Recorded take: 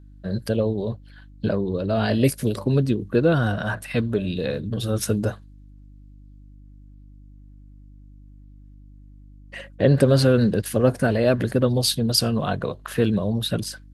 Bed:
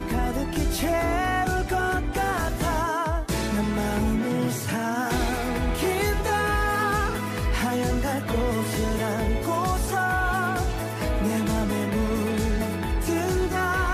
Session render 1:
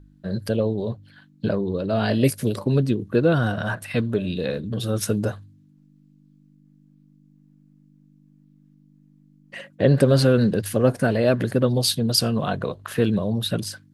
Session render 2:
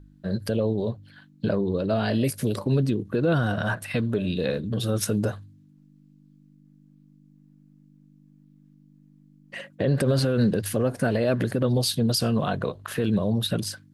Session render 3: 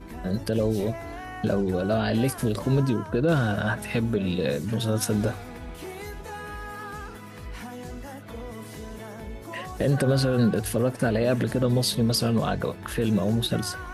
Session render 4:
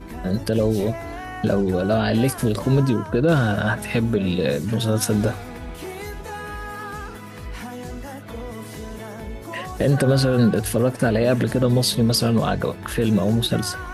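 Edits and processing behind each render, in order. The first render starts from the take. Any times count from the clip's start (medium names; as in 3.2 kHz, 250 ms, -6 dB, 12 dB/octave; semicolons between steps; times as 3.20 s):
de-hum 50 Hz, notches 2
peak limiter -14 dBFS, peak gain reduction 9.5 dB; endings held to a fixed fall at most 310 dB/s
add bed -13.5 dB
trim +4.5 dB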